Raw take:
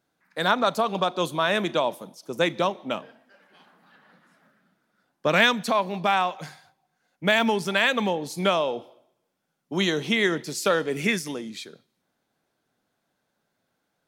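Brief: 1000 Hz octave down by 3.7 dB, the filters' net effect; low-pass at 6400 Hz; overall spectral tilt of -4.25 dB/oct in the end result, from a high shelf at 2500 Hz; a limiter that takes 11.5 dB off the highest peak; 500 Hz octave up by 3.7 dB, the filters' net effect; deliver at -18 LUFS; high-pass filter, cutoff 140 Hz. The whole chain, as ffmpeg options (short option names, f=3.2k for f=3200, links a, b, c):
-af "highpass=140,lowpass=6.4k,equalizer=f=500:t=o:g=7,equalizer=f=1k:t=o:g=-8.5,highshelf=f=2.5k:g=3,volume=10.5dB,alimiter=limit=-7.5dB:level=0:latency=1"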